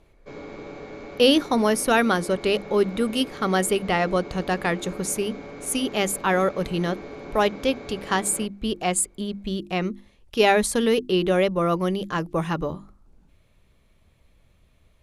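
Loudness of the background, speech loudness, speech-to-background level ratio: -39.0 LUFS, -23.5 LUFS, 15.5 dB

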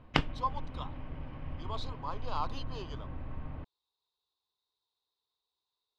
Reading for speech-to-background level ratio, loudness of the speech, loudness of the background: 1.0 dB, -41.0 LUFS, -42.0 LUFS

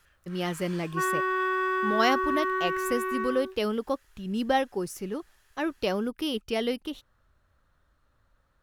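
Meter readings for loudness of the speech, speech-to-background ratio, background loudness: -30.5 LUFS, -2.0 dB, -28.5 LUFS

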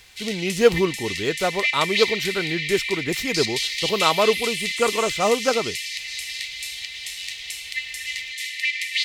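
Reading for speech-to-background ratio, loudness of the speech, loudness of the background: 2.5 dB, -23.5 LUFS, -26.0 LUFS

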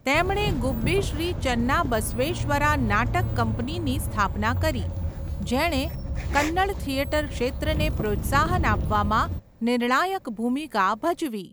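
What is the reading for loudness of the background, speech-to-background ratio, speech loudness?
-30.5 LUFS, 4.5 dB, -26.0 LUFS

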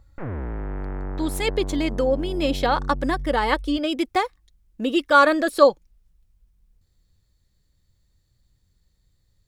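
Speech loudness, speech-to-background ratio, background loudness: -22.0 LUFS, 11.0 dB, -33.0 LUFS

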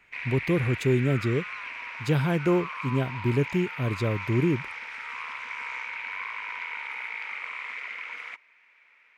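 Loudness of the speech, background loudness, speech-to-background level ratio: -27.0 LUFS, -35.0 LUFS, 8.0 dB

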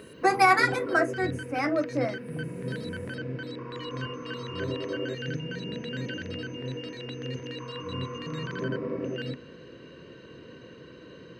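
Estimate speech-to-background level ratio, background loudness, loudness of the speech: 10.0 dB, -35.0 LUFS, -25.0 LUFS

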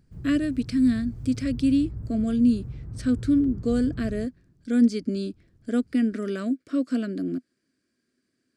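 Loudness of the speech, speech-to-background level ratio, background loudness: -25.5 LUFS, 12.5 dB, -38.0 LUFS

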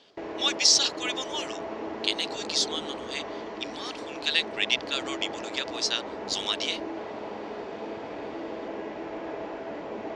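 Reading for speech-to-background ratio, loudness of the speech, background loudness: 9.5 dB, -27.0 LUFS, -36.5 LUFS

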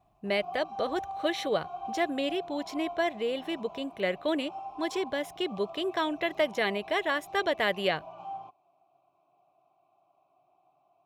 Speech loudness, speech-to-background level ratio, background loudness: -31.0 LUFS, 12.0 dB, -43.0 LUFS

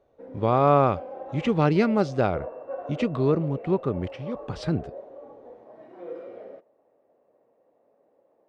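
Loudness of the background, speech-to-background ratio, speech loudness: -40.0 LUFS, 15.5 dB, -24.5 LUFS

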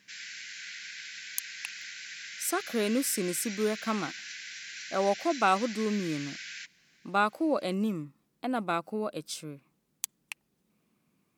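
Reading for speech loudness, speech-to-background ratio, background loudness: -31.0 LUFS, 9.0 dB, -40.0 LUFS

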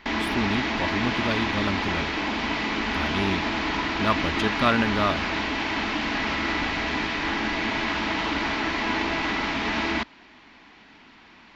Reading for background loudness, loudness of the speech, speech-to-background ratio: -26.0 LUFS, -28.0 LUFS, -2.0 dB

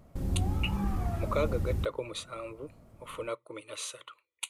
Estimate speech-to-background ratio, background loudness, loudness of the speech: -4.0 dB, -33.5 LUFS, -37.5 LUFS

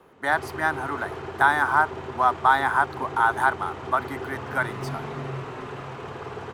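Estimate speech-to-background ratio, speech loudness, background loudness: 12.0 dB, -23.5 LUFS, -35.5 LUFS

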